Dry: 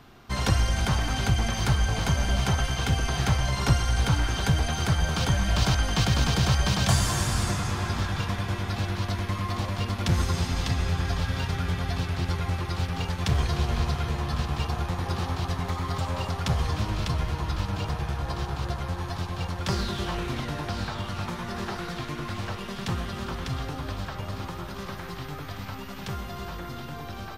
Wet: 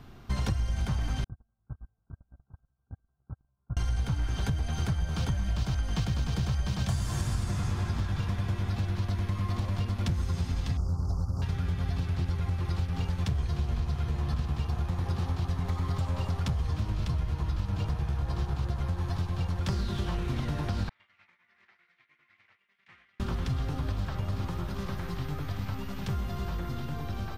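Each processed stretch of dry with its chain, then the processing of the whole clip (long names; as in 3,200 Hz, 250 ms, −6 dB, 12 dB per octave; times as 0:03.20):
0:01.24–0:03.77: noise gate −18 dBFS, range −54 dB + Chebyshev low-pass filter 1,600 Hz, order 10 + downward compressor 2.5 to 1, threshold −41 dBFS
0:10.77–0:11.42: Chebyshev band-stop filter 1,300–4,900 Hz, order 5 + highs frequency-modulated by the lows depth 0.37 ms
0:20.89–0:23.20: downward expander −24 dBFS + resonant band-pass 2,100 Hz, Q 5.5
whole clip: low-shelf EQ 230 Hz +11 dB; downward compressor, threshold −22 dBFS; level −4 dB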